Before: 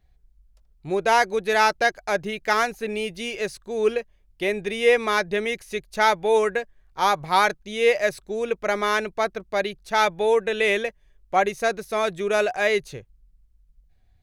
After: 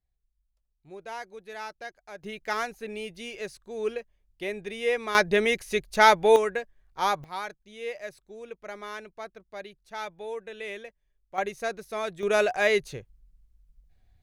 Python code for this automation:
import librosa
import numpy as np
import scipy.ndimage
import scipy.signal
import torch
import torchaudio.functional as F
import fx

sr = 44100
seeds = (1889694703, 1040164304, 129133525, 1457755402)

y = fx.gain(x, sr, db=fx.steps((0.0, -19.5), (2.23, -8.5), (5.15, 2.0), (6.36, -5.0), (7.24, -16.0), (11.38, -8.0), (12.23, -1.5)))